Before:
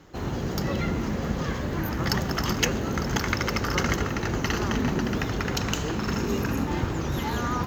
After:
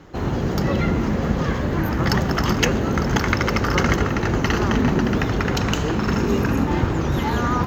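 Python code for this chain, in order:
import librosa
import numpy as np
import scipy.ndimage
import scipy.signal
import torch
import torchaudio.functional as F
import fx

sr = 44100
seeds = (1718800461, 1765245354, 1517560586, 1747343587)

y = fx.high_shelf(x, sr, hz=3900.0, db=-8.5)
y = y * 10.0 ** (7.0 / 20.0)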